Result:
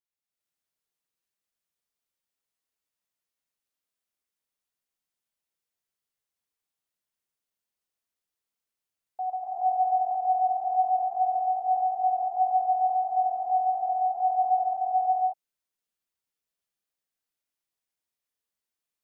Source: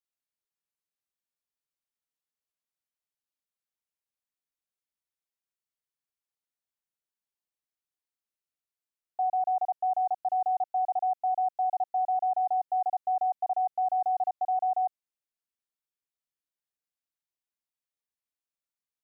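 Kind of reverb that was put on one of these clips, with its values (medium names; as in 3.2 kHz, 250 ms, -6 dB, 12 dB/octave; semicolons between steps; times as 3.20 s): gated-style reverb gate 470 ms rising, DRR -8 dB; trim -4.5 dB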